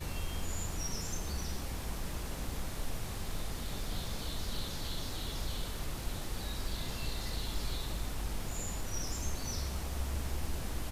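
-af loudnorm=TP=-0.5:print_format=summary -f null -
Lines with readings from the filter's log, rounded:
Input Integrated:    -39.2 LUFS
Input True Peak:     -22.7 dBTP
Input LRA:             1.5 LU
Input Threshold:     -49.2 LUFS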